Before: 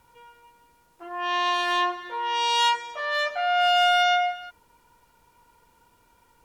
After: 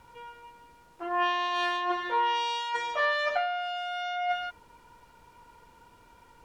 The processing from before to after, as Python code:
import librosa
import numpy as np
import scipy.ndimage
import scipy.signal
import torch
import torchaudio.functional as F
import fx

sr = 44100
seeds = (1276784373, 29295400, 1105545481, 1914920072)

y = fx.over_compress(x, sr, threshold_db=-29.0, ratio=-1.0)
y = fx.high_shelf(y, sr, hz=7600.0, db=-11.5)